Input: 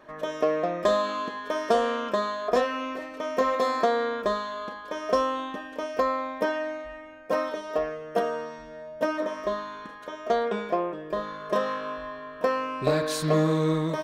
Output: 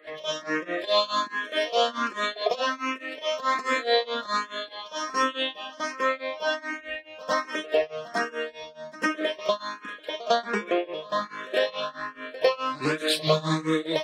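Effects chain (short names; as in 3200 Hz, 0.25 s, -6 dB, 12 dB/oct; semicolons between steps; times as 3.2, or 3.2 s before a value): bin magnitudes rounded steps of 15 dB; weighting filter D; in parallel at +2 dB: limiter -17.5 dBFS, peak gain reduction 7.5 dB; on the sum: upward compressor, threshold -34 dBFS; grains 0.237 s, grains 4.7/s, spray 23 ms, pitch spread up and down by 0 st; on a send: reverse echo 0.102 s -19.5 dB; on the sum: endless phaser +1.3 Hz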